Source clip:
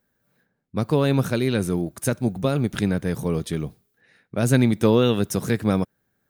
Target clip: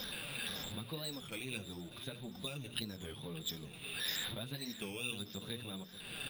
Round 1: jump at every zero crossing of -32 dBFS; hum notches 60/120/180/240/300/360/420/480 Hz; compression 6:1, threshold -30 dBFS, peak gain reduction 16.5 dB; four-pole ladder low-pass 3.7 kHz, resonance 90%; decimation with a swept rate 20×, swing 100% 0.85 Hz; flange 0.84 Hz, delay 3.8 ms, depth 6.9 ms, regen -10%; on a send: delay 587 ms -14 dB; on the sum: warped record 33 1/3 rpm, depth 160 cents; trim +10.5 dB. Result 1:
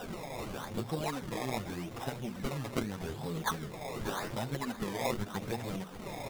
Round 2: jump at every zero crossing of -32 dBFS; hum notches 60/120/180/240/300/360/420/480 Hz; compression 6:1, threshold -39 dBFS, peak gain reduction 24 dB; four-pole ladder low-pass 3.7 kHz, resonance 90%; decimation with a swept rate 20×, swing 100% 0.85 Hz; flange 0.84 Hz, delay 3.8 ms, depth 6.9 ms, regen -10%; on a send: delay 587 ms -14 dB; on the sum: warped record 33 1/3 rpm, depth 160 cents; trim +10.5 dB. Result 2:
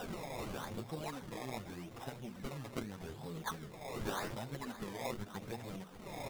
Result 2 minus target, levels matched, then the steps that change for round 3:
decimation with a swept rate: distortion +6 dB
change: decimation with a swept rate 5×, swing 100% 0.85 Hz

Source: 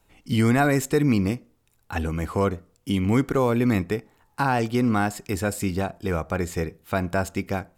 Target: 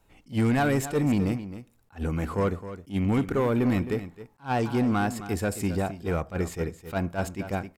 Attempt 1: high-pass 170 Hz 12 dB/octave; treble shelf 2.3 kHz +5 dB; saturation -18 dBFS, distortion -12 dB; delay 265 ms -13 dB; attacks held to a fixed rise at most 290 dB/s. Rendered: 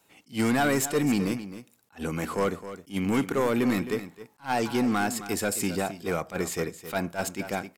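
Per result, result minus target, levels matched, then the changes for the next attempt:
125 Hz band -6.0 dB; 4 kHz band +6.0 dB
remove: high-pass 170 Hz 12 dB/octave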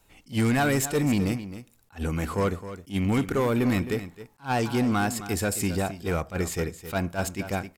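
4 kHz band +5.0 dB
change: treble shelf 2.3 kHz -4 dB

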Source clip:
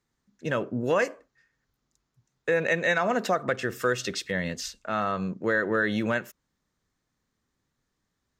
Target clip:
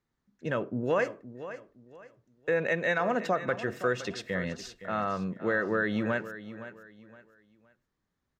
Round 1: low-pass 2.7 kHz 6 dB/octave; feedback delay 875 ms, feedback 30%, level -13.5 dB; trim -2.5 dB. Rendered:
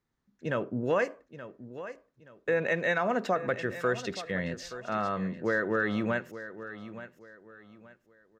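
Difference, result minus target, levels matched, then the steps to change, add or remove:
echo 359 ms late
change: feedback delay 516 ms, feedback 30%, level -13.5 dB

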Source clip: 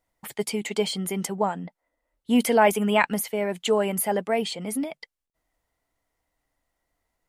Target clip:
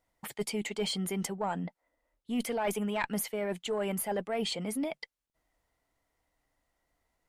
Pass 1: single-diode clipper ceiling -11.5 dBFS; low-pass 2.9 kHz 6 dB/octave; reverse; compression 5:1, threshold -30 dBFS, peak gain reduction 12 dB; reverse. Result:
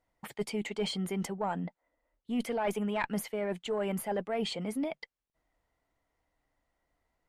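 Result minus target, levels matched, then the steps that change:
8 kHz band -6.0 dB
change: low-pass 10 kHz 6 dB/octave

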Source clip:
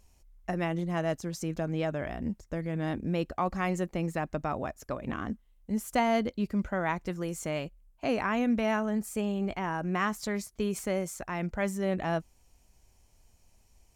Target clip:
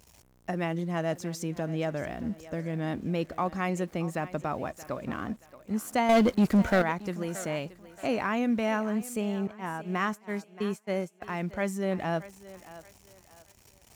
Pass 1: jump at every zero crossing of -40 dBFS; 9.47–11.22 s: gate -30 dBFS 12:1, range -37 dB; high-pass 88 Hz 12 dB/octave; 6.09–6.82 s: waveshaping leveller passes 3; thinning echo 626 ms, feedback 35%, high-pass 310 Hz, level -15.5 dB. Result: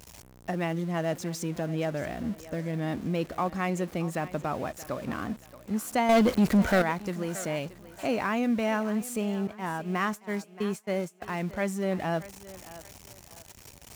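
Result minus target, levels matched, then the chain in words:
jump at every zero crossing: distortion +9 dB
jump at every zero crossing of -50 dBFS; 9.47–11.22 s: gate -30 dBFS 12:1, range -37 dB; high-pass 88 Hz 12 dB/octave; 6.09–6.82 s: waveshaping leveller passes 3; thinning echo 626 ms, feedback 35%, high-pass 310 Hz, level -15.5 dB

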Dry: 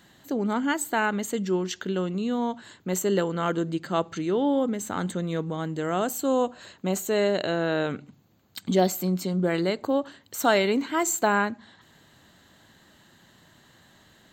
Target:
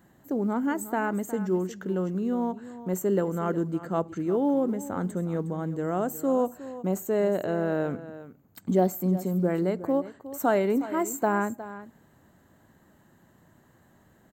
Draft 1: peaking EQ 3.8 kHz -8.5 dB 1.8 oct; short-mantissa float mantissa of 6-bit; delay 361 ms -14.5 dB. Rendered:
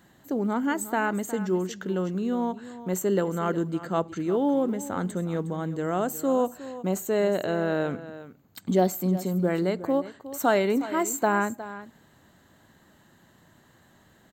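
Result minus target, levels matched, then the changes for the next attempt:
4 kHz band +8.0 dB
change: peaking EQ 3.8 kHz -19 dB 1.8 oct

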